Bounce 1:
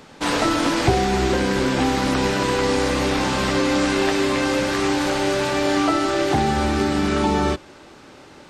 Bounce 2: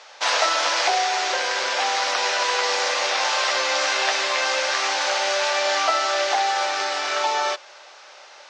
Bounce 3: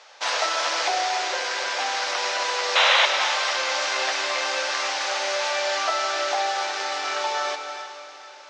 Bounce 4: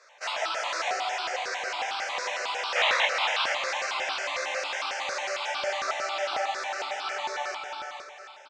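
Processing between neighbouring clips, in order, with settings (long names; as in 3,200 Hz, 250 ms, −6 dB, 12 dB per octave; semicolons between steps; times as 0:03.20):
elliptic band-pass filter 600–6,100 Hz, stop band 50 dB; high-shelf EQ 4,200 Hz +8.5 dB; level +1.5 dB
sound drawn into the spectrogram noise, 0:02.75–0:03.06, 520–4,100 Hz −14 dBFS; feedback delay with all-pass diffusion 452 ms, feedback 42%, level −13 dB; reverb whose tail is shaped and stops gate 330 ms rising, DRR 8 dB; level −4 dB
multi-voice chorus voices 2, 0.78 Hz, delay 17 ms, depth 4.5 ms; single-tap delay 472 ms −7 dB; step-sequenced phaser 11 Hz 830–1,900 Hz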